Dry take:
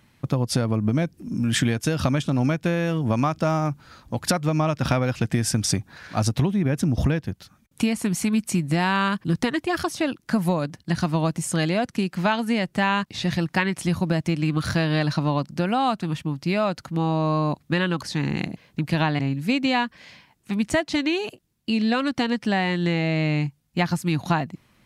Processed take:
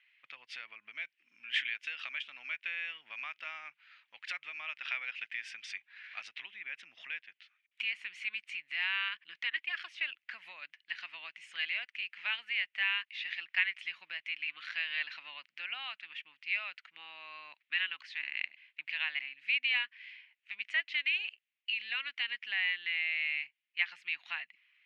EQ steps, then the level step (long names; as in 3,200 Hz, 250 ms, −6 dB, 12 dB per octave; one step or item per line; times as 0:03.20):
flat-topped band-pass 2,400 Hz, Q 2.2
0.0 dB